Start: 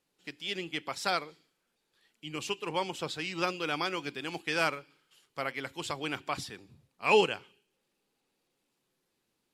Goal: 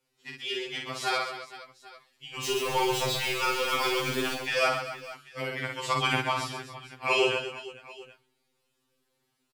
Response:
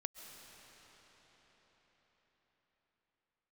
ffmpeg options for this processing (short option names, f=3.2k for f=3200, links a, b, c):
-filter_complex "[0:a]asettb=1/sr,asplit=3[a][b][c];[a]atrim=end=2.444[d];[b]atrim=start=2.44:end=4.34,asetpts=PTS-STARTPTS,afade=t=in:d=0.004:c=qsin,afade=t=out:st=1.896:d=0.004:c=qsin,aeval=exprs='val(0)+0.5*0.0251*sgn(val(0))':c=same[e];[c]atrim=start=4.336[f];[d][e]acrossfade=d=0.004:c1=hsin:c2=qsin[g];[g][f]acrossfade=d=0.004:c1=qsin:c2=hsin,asplit=3[h][i][j];[h]afade=t=out:st=5.9:d=0.02[k];[i]acontrast=88,afade=t=in:st=5.9:d=0.02,afade=t=out:st=6.3:d=0.02[l];[j]afade=t=in:st=6.3:d=0.02[m];[k][l][m]amix=inputs=3:normalize=0,aecho=1:1:50|130|258|462.8|790.5:0.631|0.398|0.251|0.158|0.1,afftfilt=real='re*2.45*eq(mod(b,6),0)':imag='im*2.45*eq(mod(b,6),0)':win_size=2048:overlap=0.75,volume=3.5dB"